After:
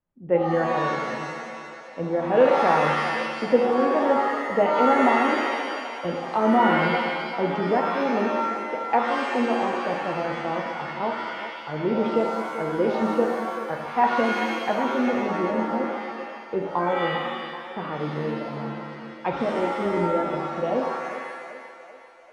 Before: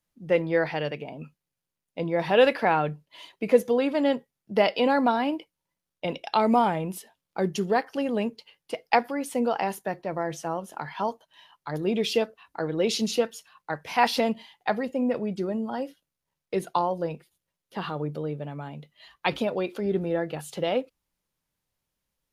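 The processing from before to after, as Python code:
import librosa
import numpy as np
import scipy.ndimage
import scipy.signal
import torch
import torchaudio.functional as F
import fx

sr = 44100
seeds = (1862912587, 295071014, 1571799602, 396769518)

y = scipy.signal.sosfilt(scipy.signal.butter(2, 1300.0, 'lowpass', fs=sr, output='sos'), x)
y = fx.echo_thinned(y, sr, ms=390, feedback_pct=63, hz=340.0, wet_db=-10.5)
y = fx.rev_shimmer(y, sr, seeds[0], rt60_s=1.2, semitones=7, shimmer_db=-2, drr_db=2.0)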